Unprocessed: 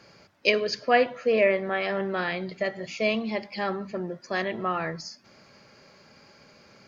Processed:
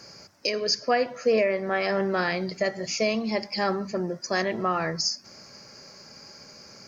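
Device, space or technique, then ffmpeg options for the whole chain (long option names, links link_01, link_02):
over-bright horn tweeter: -af "highshelf=frequency=4300:width_type=q:width=3:gain=6.5,alimiter=limit=-17dB:level=0:latency=1:release=341,volume=3.5dB"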